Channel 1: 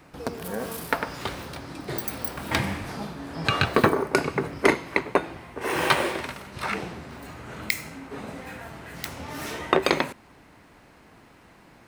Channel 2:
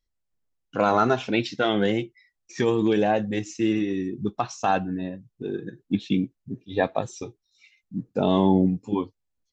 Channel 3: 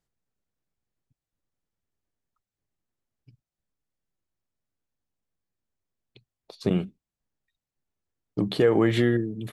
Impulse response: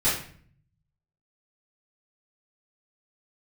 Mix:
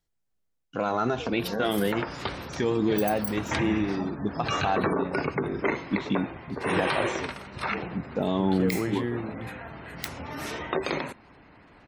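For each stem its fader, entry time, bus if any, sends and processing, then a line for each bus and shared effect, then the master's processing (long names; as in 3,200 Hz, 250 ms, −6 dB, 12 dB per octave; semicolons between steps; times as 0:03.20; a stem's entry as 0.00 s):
−0.5 dB, 1.00 s, no send, gate on every frequency bin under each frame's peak −25 dB strong
−2.5 dB, 0.00 s, no send, no processing
−1.5 dB, 0.00 s, no send, automatic ducking −7 dB, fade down 0.20 s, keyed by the second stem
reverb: not used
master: brickwall limiter −15 dBFS, peak gain reduction 10 dB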